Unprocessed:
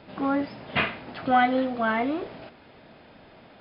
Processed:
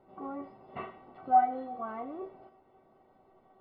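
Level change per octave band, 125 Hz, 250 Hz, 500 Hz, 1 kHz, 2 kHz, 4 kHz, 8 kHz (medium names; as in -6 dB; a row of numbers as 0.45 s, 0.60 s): under -15 dB, -15.5 dB, -12.0 dB, -3.0 dB, -21.5 dB, under -25 dB, no reading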